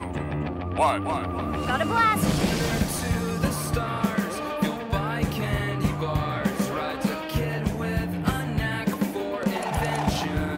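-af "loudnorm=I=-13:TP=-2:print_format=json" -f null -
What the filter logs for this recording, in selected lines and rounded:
"input_i" : "-26.3",
"input_tp" : "-9.9",
"input_lra" : "2.3",
"input_thresh" : "-36.3",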